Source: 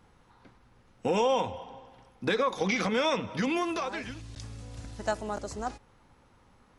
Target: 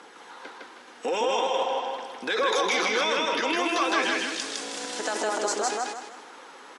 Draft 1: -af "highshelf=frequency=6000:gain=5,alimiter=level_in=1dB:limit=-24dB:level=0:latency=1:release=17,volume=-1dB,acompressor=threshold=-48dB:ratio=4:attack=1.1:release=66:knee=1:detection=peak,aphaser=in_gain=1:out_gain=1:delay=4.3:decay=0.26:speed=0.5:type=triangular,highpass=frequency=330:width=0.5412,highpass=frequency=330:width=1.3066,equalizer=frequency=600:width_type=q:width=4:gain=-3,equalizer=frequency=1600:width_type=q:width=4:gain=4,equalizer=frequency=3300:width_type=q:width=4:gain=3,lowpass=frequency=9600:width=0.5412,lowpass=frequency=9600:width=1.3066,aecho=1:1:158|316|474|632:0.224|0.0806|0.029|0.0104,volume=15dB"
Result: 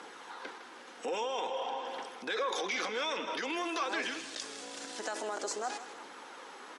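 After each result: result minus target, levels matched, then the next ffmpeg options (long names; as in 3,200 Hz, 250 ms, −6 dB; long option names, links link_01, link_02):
echo-to-direct −11.5 dB; downward compressor: peak gain reduction +7.5 dB
-af "highshelf=frequency=6000:gain=5,alimiter=level_in=1dB:limit=-24dB:level=0:latency=1:release=17,volume=-1dB,acompressor=threshold=-48dB:ratio=4:attack=1.1:release=66:knee=1:detection=peak,aphaser=in_gain=1:out_gain=1:delay=4.3:decay=0.26:speed=0.5:type=triangular,highpass=frequency=330:width=0.5412,highpass=frequency=330:width=1.3066,equalizer=frequency=600:width_type=q:width=4:gain=-3,equalizer=frequency=1600:width_type=q:width=4:gain=4,equalizer=frequency=3300:width_type=q:width=4:gain=3,lowpass=frequency=9600:width=0.5412,lowpass=frequency=9600:width=1.3066,aecho=1:1:158|316|474|632|790:0.841|0.303|0.109|0.0393|0.0141,volume=15dB"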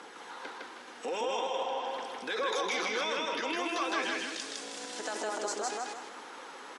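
downward compressor: peak gain reduction +7.5 dB
-af "highshelf=frequency=6000:gain=5,alimiter=level_in=1dB:limit=-24dB:level=0:latency=1:release=17,volume=-1dB,acompressor=threshold=-38dB:ratio=4:attack=1.1:release=66:knee=1:detection=peak,aphaser=in_gain=1:out_gain=1:delay=4.3:decay=0.26:speed=0.5:type=triangular,highpass=frequency=330:width=0.5412,highpass=frequency=330:width=1.3066,equalizer=frequency=600:width_type=q:width=4:gain=-3,equalizer=frequency=1600:width_type=q:width=4:gain=4,equalizer=frequency=3300:width_type=q:width=4:gain=3,lowpass=frequency=9600:width=0.5412,lowpass=frequency=9600:width=1.3066,aecho=1:1:158|316|474|632|790:0.841|0.303|0.109|0.0393|0.0141,volume=15dB"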